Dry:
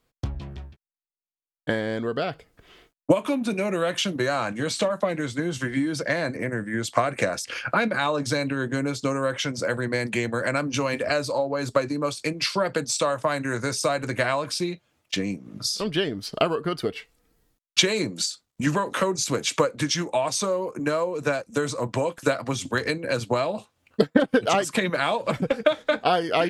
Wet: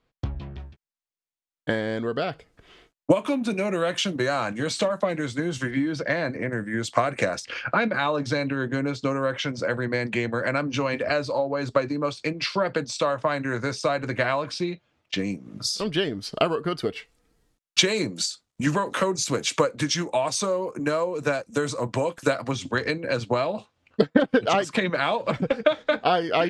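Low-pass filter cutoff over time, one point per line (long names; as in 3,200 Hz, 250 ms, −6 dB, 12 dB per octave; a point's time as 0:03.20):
4,200 Hz
from 0:00.60 8,900 Hz
from 0:05.71 4,200 Hz
from 0:06.53 7,900 Hz
from 0:07.40 4,400 Hz
from 0:15.19 10,000 Hz
from 0:22.51 5,400 Hz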